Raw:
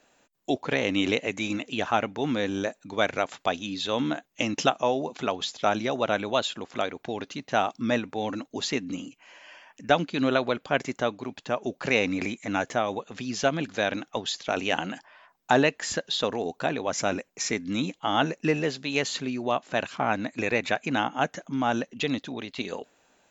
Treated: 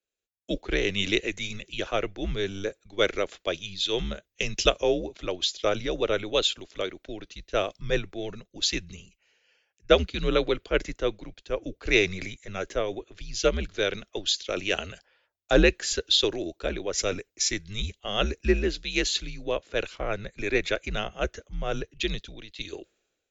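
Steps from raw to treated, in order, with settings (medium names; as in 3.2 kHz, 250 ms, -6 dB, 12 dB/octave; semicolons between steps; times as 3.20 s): graphic EQ 125/250/500/1000/4000 Hz +10/-12/+6/-11/+4 dB; frequency shift -96 Hz; three bands expanded up and down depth 70%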